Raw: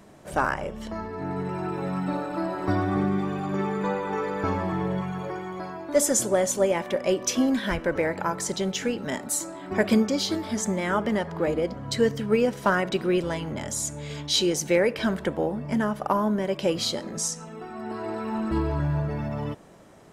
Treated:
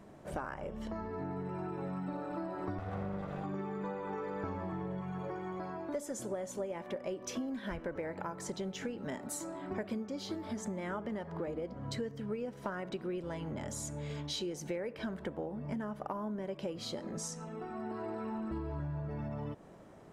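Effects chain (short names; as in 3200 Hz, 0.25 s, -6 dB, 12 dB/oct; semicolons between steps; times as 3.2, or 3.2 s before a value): 2.78–3.44 minimum comb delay 1.5 ms; high shelf 2200 Hz -9 dB; compressor 6:1, threshold -33 dBFS, peak gain reduction 16 dB; gain -3 dB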